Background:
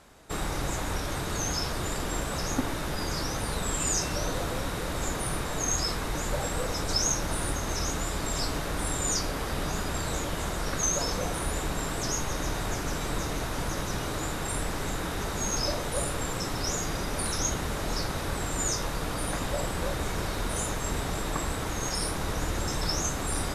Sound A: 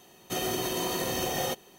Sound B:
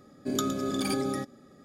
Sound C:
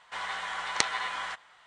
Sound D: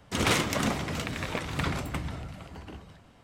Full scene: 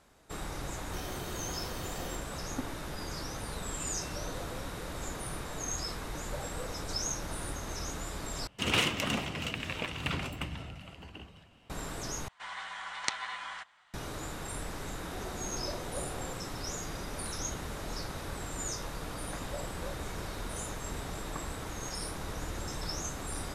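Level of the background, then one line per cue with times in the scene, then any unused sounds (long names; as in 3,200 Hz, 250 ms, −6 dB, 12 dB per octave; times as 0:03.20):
background −8 dB
0:00.62: mix in A −14.5 dB
0:08.47: overwrite with D −5.5 dB + parametric band 2,800 Hz +11.5 dB 0.37 octaves
0:12.28: overwrite with C −6 dB + parametric band 450 Hz −6.5 dB 0.72 octaves
0:14.80: mix in A −13 dB + linear-phase brick-wall low-pass 1,000 Hz
not used: B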